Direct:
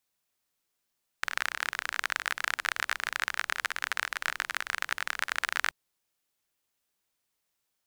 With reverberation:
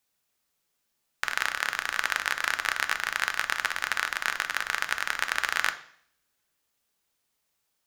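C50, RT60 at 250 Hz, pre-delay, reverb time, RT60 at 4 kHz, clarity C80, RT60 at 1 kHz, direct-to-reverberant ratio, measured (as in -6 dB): 14.0 dB, 0.80 s, 3 ms, 0.60 s, 0.65 s, 17.0 dB, 0.60 s, 8.0 dB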